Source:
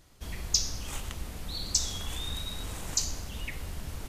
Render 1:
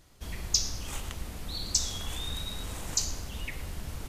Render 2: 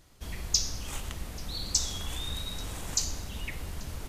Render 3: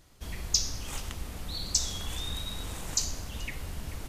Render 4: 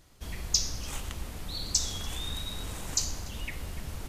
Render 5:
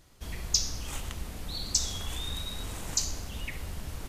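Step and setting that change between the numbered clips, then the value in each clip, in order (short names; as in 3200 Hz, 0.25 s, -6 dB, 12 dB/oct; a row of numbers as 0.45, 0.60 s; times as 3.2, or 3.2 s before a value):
tape echo, time: 111, 835, 434, 292, 71 ms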